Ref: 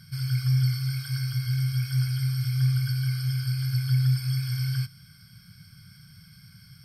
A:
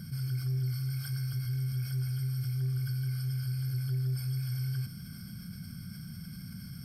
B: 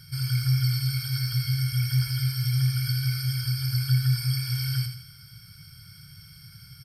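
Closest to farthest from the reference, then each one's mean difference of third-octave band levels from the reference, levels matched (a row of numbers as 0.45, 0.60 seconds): B, A; 3.0, 6.0 decibels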